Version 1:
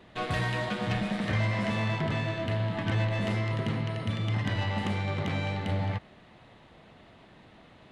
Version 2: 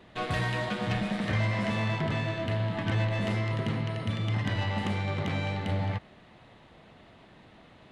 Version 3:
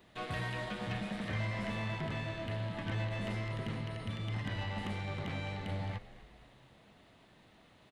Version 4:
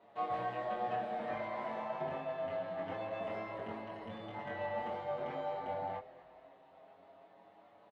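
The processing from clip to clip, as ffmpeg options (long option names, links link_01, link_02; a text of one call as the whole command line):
ffmpeg -i in.wav -af anull out.wav
ffmpeg -i in.wav -filter_complex "[0:a]acrossover=split=3800[link_01][link_02];[link_02]acompressor=threshold=-54dB:ratio=4:attack=1:release=60[link_03];[link_01][link_03]amix=inputs=2:normalize=0,aemphasis=mode=production:type=50kf,asplit=6[link_04][link_05][link_06][link_07][link_08][link_09];[link_05]adelay=251,afreqshift=-76,volume=-17dB[link_10];[link_06]adelay=502,afreqshift=-152,volume=-22.5dB[link_11];[link_07]adelay=753,afreqshift=-228,volume=-28dB[link_12];[link_08]adelay=1004,afreqshift=-304,volume=-33.5dB[link_13];[link_09]adelay=1255,afreqshift=-380,volume=-39.1dB[link_14];[link_04][link_10][link_11][link_12][link_13][link_14]amix=inputs=6:normalize=0,volume=-8.5dB" out.wav
ffmpeg -i in.wav -filter_complex "[0:a]bandpass=frequency=700:width_type=q:width=2.2:csg=0,asplit=2[link_01][link_02];[link_02]adelay=22,volume=-2dB[link_03];[link_01][link_03]amix=inputs=2:normalize=0,asplit=2[link_04][link_05];[link_05]adelay=6.8,afreqshift=0.26[link_06];[link_04][link_06]amix=inputs=2:normalize=1,volume=10dB" out.wav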